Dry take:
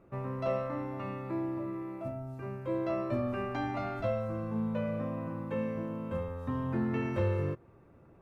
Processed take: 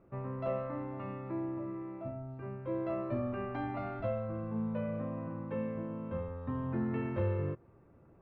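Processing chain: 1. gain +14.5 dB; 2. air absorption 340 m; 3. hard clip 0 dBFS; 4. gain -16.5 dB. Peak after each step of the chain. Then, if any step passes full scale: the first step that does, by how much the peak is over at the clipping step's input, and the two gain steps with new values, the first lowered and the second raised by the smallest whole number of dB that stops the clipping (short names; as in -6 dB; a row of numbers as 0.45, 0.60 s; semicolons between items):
-5.0, -5.5, -5.5, -22.0 dBFS; no overload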